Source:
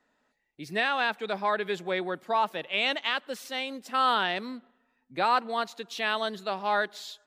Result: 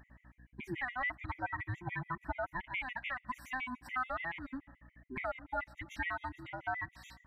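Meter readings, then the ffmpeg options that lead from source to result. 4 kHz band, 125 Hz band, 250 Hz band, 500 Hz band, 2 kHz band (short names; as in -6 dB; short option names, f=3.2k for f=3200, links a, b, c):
-21.5 dB, +2.5 dB, -8.0 dB, -15.0 dB, -7.5 dB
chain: -af "afftfilt=real='real(if(between(b,1,1008),(2*floor((b-1)/24)+1)*24-b,b),0)':imag='imag(if(between(b,1,1008),(2*floor((b-1)/24)+1)*24-b,b),0)*if(between(b,1,1008),-1,1)':win_size=2048:overlap=0.75,acompressor=threshold=-40dB:ratio=8,highshelf=f=2.8k:t=q:w=3:g=-11,aeval=exprs='val(0)+0.000891*(sin(2*PI*60*n/s)+sin(2*PI*2*60*n/s)/2+sin(2*PI*3*60*n/s)/3+sin(2*PI*4*60*n/s)/4+sin(2*PI*5*60*n/s)/5)':c=same,afftfilt=real='re*gt(sin(2*PI*7*pts/sr)*(1-2*mod(floor(b*sr/1024/1900),2)),0)':imag='im*gt(sin(2*PI*7*pts/sr)*(1-2*mod(floor(b*sr/1024/1900),2)),0)':win_size=1024:overlap=0.75,volume=5.5dB"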